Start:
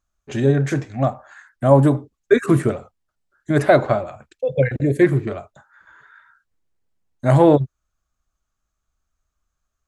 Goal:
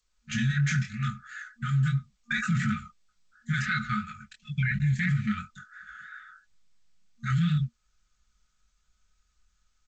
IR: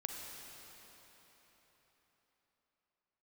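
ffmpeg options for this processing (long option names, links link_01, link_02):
-filter_complex "[0:a]asplit=3[link_01][link_02][link_03];[link_01]afade=type=out:start_time=2.55:duration=0.02[link_04];[link_02]adynamicequalizer=threshold=0.0447:dfrequency=140:dqfactor=1.7:tfrequency=140:tqfactor=1.7:attack=5:release=100:ratio=0.375:range=1.5:mode=cutabove:tftype=bell,afade=type=in:start_time=2.55:duration=0.02,afade=type=out:start_time=5.22:duration=0.02[link_05];[link_03]afade=type=in:start_time=5.22:duration=0.02[link_06];[link_04][link_05][link_06]amix=inputs=3:normalize=0,flanger=delay=19:depth=5.6:speed=2.9,equalizer=frequency=320:width=2.8:gain=-12,dynaudnorm=framelen=150:gausssize=3:maxgain=8.5dB,afftfilt=real='re*(1-between(b*sr/4096,230,1200))':imag='im*(1-between(b*sr/4096,230,1200))':win_size=4096:overlap=0.75,aecho=1:1:4.7:0.62,alimiter=limit=-16.5dB:level=0:latency=1:release=19,volume=-2.5dB" -ar 16000 -c:a g722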